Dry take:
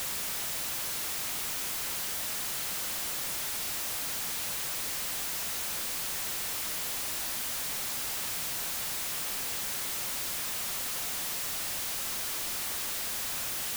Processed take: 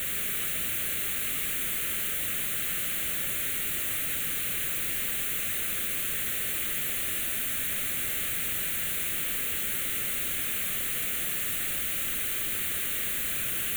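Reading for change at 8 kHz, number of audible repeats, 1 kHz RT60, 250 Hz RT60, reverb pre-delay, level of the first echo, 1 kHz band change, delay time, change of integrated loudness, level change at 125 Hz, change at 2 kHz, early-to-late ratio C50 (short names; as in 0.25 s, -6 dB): +1.0 dB, none, 2.5 s, 2.6 s, 14 ms, none, -3.0 dB, none, +4.0 dB, +6.0 dB, +5.5 dB, 4.5 dB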